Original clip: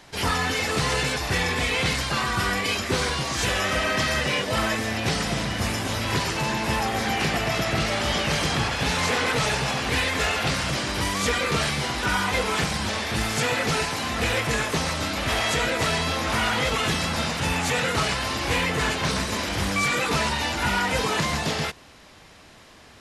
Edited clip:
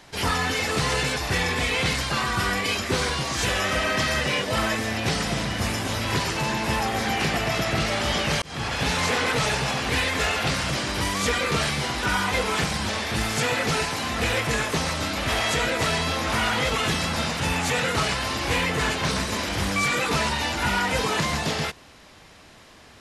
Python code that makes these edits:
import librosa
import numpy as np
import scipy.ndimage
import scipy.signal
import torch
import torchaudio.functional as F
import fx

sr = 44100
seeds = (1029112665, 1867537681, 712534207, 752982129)

y = fx.edit(x, sr, fx.fade_in_span(start_s=8.42, length_s=0.34), tone=tone)